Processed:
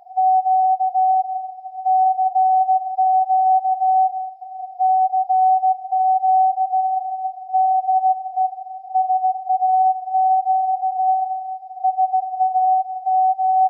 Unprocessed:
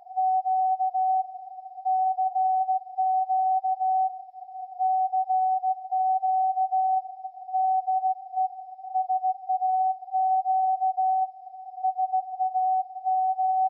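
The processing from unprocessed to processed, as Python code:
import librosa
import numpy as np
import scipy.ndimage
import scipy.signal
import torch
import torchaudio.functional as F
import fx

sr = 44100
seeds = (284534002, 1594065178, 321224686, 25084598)

y = fx.dynamic_eq(x, sr, hz=630.0, q=1.1, threshold_db=-37.0, ratio=4.0, max_db=5)
y = fx.echo_split(y, sr, split_hz=750.0, low_ms=82, high_ms=323, feedback_pct=52, wet_db=-13)
y = F.gain(torch.from_numpy(y), 3.0).numpy()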